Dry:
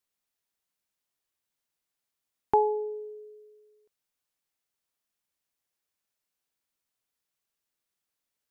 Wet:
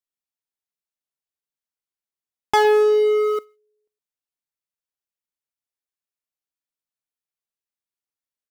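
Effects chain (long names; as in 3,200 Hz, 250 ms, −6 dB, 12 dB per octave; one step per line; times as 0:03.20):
leveller curve on the samples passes 5
slap from a distant wall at 19 metres, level −15 dB
0:02.81–0:03.39: envelope flattener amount 70%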